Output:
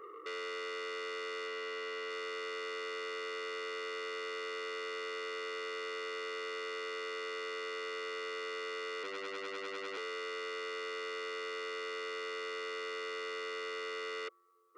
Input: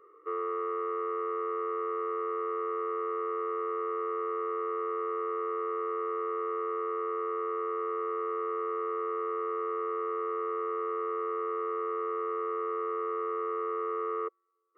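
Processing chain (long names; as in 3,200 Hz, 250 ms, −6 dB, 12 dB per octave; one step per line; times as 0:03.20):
0:09.03–0:09.97: ring modulation 50 Hz
brickwall limiter −34.5 dBFS, peak gain reduction 8 dB
0:01.47–0:02.10: notch filter 760 Hz, Q 12
saturating transformer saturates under 2,900 Hz
level +8.5 dB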